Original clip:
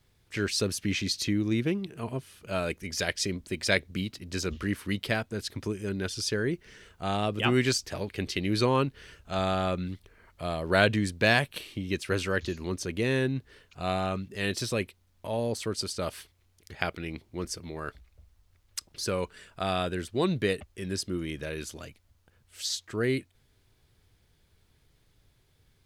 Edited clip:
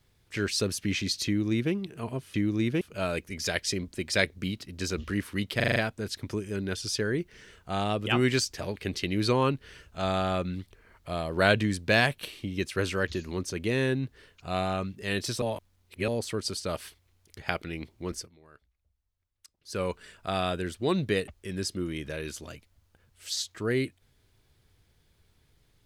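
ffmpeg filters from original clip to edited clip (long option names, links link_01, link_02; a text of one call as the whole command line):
ffmpeg -i in.wav -filter_complex "[0:a]asplit=12[link_01][link_02][link_03][link_04][link_05][link_06][link_07][link_08][link_09][link_10][link_11][link_12];[link_01]atrim=end=2.342[link_13];[link_02]atrim=start=1.258:end=1.732[link_14];[link_03]atrim=start=2.338:end=5.132[link_15];[link_04]atrim=start=5.088:end=5.132[link_16];[link_05]atrim=start=5.088:end=5.132[link_17];[link_06]atrim=start=5.088:end=5.132[link_18];[link_07]atrim=start=5.088:end=5.132[link_19];[link_08]atrim=start=5.088:end=14.752[link_20];[link_09]atrim=start=14.748:end=15.412,asetpts=PTS-STARTPTS,areverse[link_21];[link_10]atrim=start=15.408:end=17.64,asetpts=PTS-STARTPTS,afade=type=out:start_time=2.082:duration=0.15:silence=0.112202[link_22];[link_11]atrim=start=17.64:end=18.99,asetpts=PTS-STARTPTS,volume=-19dB[link_23];[link_12]atrim=start=18.99,asetpts=PTS-STARTPTS,afade=type=in:duration=0.15:silence=0.112202[link_24];[link_13][link_14]acrossfade=duration=0.004:curve1=hsin:curve2=hsin[link_25];[link_25][link_15]acrossfade=duration=0.004:curve1=hsin:curve2=hsin[link_26];[link_26][link_16]acrossfade=duration=0.004:curve1=hsin:curve2=hsin[link_27];[link_27][link_17]acrossfade=duration=0.004:curve1=hsin:curve2=hsin[link_28];[link_28][link_18]acrossfade=duration=0.004:curve1=hsin:curve2=hsin[link_29];[link_29][link_19]acrossfade=duration=0.004:curve1=hsin:curve2=hsin[link_30];[link_30][link_20]acrossfade=duration=0.004:curve1=hsin:curve2=hsin[link_31];[link_31][link_21]acrossfade=duration=0.004:curve1=hsin:curve2=hsin[link_32];[link_22][link_23][link_24]concat=n=3:v=0:a=1[link_33];[link_32][link_33]acrossfade=duration=0.004:curve1=hsin:curve2=hsin" out.wav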